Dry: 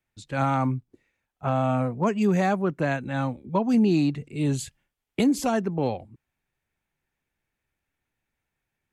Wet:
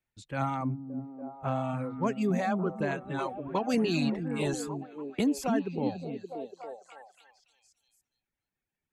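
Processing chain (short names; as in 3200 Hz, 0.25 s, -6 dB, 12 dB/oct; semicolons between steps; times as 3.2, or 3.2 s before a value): 3.18–4.58 spectral limiter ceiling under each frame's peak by 14 dB; reverb removal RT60 1.4 s; delay with a stepping band-pass 0.286 s, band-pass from 210 Hz, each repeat 0.7 oct, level -2 dB; gain -5.5 dB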